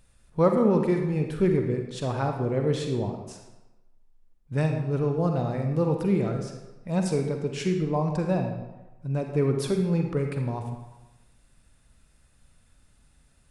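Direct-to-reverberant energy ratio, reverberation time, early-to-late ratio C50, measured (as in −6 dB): 3.5 dB, 1.0 s, 5.0 dB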